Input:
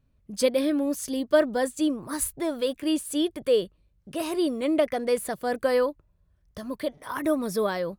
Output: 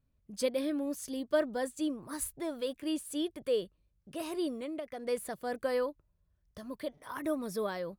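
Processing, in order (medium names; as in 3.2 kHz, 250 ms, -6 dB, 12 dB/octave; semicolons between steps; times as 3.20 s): 4.55–5.07 s: compression 6:1, threshold -28 dBFS, peak gain reduction 10.5 dB; trim -8.5 dB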